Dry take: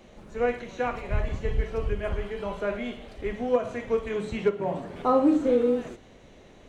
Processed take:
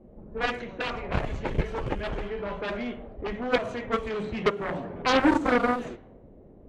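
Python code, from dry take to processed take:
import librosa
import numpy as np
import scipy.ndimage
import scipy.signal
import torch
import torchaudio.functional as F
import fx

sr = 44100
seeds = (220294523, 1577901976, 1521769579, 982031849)

y = fx.env_lowpass(x, sr, base_hz=410.0, full_db=-22.5)
y = fx.cheby_harmonics(y, sr, harmonics=(7,), levels_db=(-8,), full_scale_db=-11.0)
y = y * 10.0 ** (-2.5 / 20.0)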